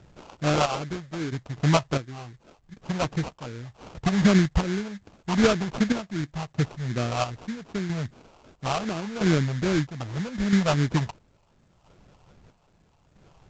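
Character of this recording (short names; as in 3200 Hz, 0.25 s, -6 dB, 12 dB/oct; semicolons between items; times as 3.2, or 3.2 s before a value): chopped level 0.76 Hz, depth 60%, duty 50%; phasing stages 4, 2.6 Hz, lowest notch 300–1200 Hz; aliases and images of a low sample rate 1900 Hz, jitter 20%; A-law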